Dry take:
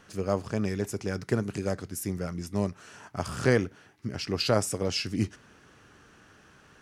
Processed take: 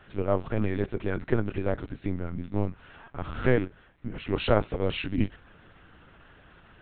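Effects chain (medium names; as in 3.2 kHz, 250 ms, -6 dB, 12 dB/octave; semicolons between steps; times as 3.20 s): 2.16–4.24 s: harmonic-percussive split percussive -7 dB; LPC vocoder at 8 kHz pitch kept; trim +2.5 dB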